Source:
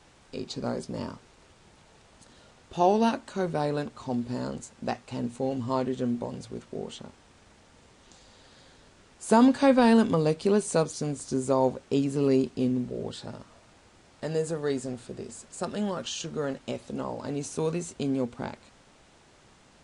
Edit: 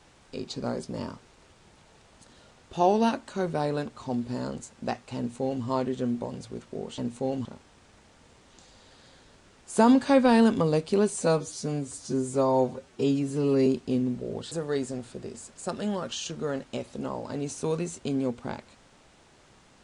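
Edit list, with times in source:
0:05.17–0:05.64: duplicate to 0:06.98
0:10.69–0:12.36: time-stretch 1.5×
0:13.21–0:14.46: remove

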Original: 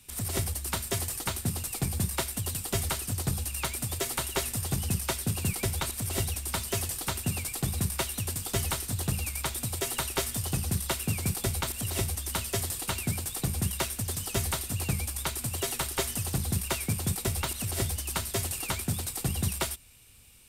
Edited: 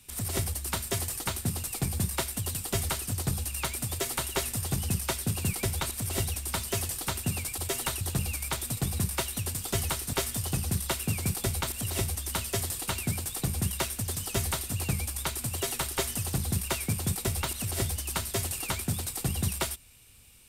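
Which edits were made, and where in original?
0:07.58–0:08.94: swap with 0:09.70–0:10.13

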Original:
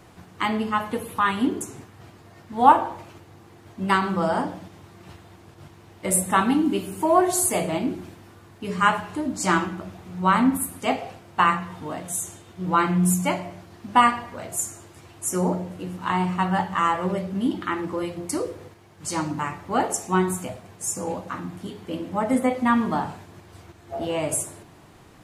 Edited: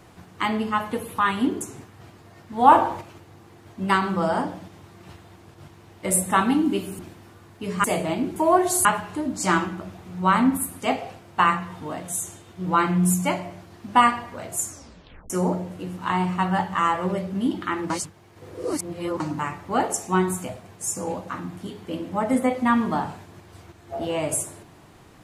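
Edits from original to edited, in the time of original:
0:02.72–0:03.01: clip gain +5 dB
0:06.99–0:07.48: swap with 0:08.00–0:08.85
0:14.68: tape stop 0.62 s
0:17.90–0:19.20: reverse

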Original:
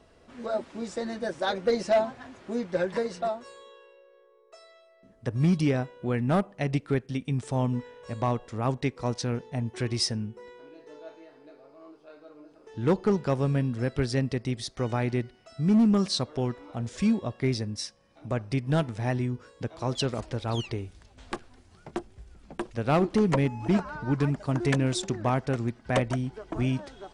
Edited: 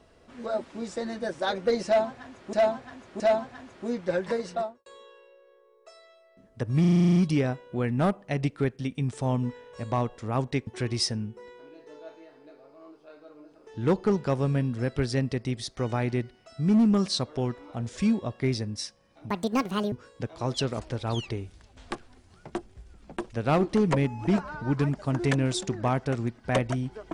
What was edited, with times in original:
0:01.86–0:02.53: repeat, 3 plays
0:03.22–0:03.52: fade out and dull
0:05.46: stutter 0.04 s, 10 plays
0:08.97–0:09.67: remove
0:18.30–0:19.33: play speed 166%

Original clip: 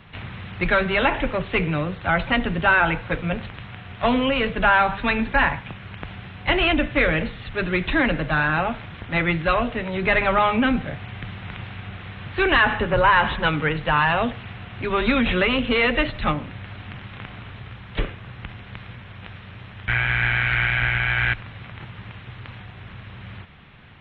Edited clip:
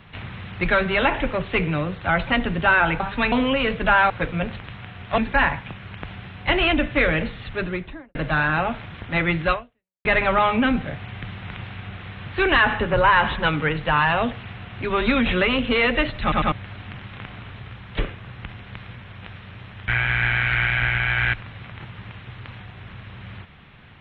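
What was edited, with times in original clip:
0:03.00–0:04.08: swap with 0:04.86–0:05.18
0:07.46–0:08.15: fade out and dull
0:09.52–0:10.05: fade out exponential
0:16.22: stutter in place 0.10 s, 3 plays

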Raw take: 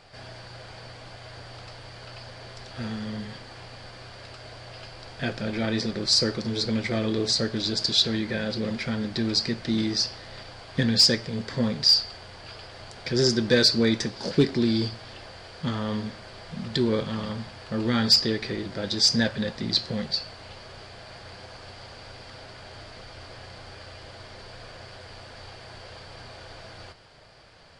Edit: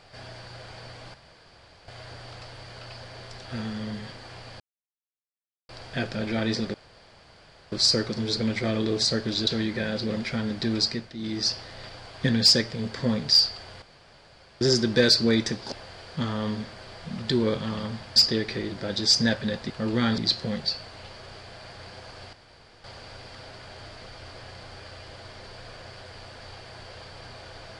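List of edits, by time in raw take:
0:01.14: splice in room tone 0.74 s
0:03.86–0:04.95: silence
0:06.00: splice in room tone 0.98 s
0:07.75–0:08.01: remove
0:09.37–0:10.02: duck −12 dB, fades 0.31 s
0:12.36–0:13.15: fill with room tone
0:14.26–0:15.18: remove
0:17.62–0:18.10: move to 0:19.64
0:21.79: splice in room tone 0.51 s

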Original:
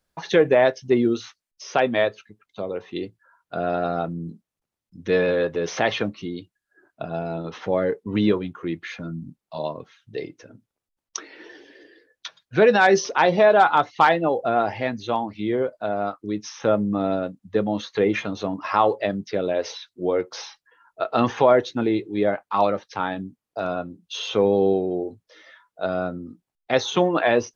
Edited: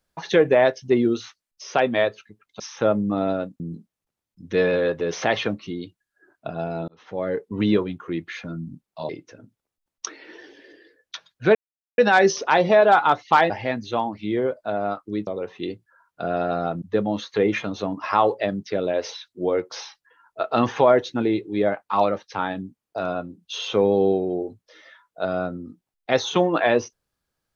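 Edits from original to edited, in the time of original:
0:02.60–0:04.15: swap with 0:16.43–0:17.43
0:07.43–0:08.03: fade in
0:09.64–0:10.20: remove
0:12.66: splice in silence 0.43 s
0:14.18–0:14.66: remove

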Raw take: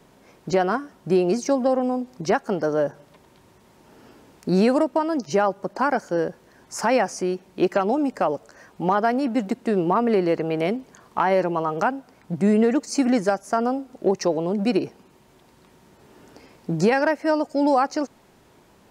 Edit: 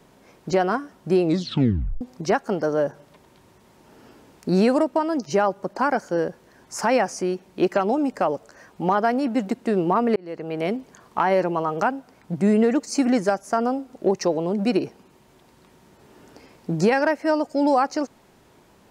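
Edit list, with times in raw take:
0:01.21: tape stop 0.80 s
0:10.16–0:10.76: fade in

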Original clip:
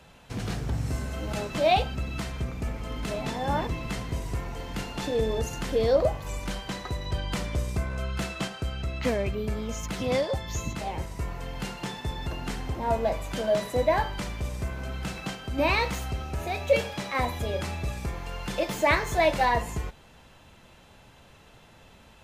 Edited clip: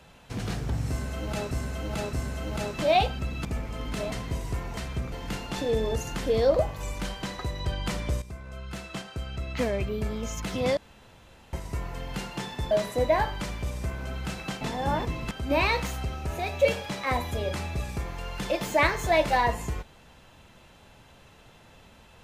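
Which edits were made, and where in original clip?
0:00.89–0:01.51: repeat, 3 plays
0:02.21–0:02.56: move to 0:04.58
0:03.23–0:03.93: move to 0:15.39
0:07.68–0:09.33: fade in, from −13.5 dB
0:10.23–0:10.99: fill with room tone
0:12.17–0:13.49: remove

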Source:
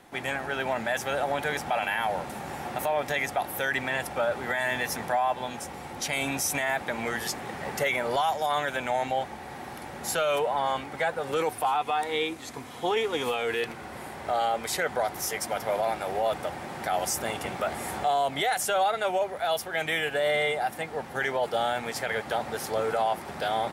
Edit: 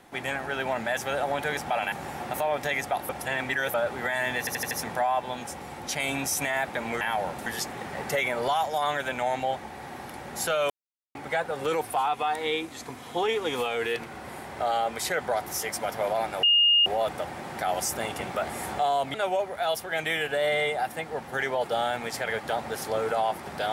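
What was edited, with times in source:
0:01.92–0:02.37: move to 0:07.14
0:03.54–0:04.19: reverse
0:04.84: stutter 0.08 s, 5 plays
0:10.38–0:10.83: silence
0:16.11: insert tone 2,840 Hz −16.5 dBFS 0.43 s
0:18.39–0:18.96: remove

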